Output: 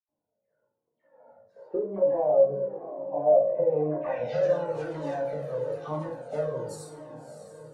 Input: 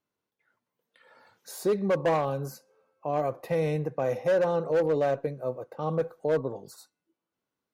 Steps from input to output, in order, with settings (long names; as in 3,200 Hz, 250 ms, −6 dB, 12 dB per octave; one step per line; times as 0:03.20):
0:01.56–0:04.11: high-pass filter 230 Hz 12 dB per octave
downward compressor, threshold −28 dBFS, peak gain reduction 7.5 dB
all-pass dispersion lows, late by 88 ms, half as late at 1,800 Hz
hard clipping −23 dBFS, distortion −31 dB
low-pass filter sweep 600 Hz → 9,000 Hz, 0:03.65–0:04.56
feedback delay with all-pass diffusion 631 ms, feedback 49%, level −10 dB
convolution reverb RT60 0.55 s, pre-delay 11 ms, DRR −3.5 dB
flanger whose copies keep moving one way falling 1 Hz